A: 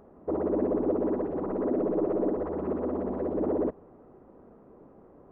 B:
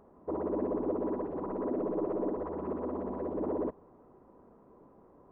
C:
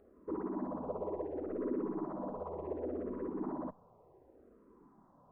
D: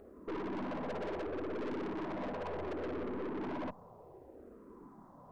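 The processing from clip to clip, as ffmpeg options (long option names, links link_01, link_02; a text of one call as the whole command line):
ffmpeg -i in.wav -af "equalizer=frequency=1000:width_type=o:width=0.28:gain=8,volume=-5.5dB" out.wav
ffmpeg -i in.wav -filter_complex "[0:a]asplit=2[link_01][link_02];[link_02]afreqshift=-0.68[link_03];[link_01][link_03]amix=inputs=2:normalize=1,volume=-1.5dB" out.wav
ffmpeg -i in.wav -af "aeval=exprs='(tanh(200*val(0)+0.35)-tanh(0.35))/200':channel_layout=same,volume=9dB" out.wav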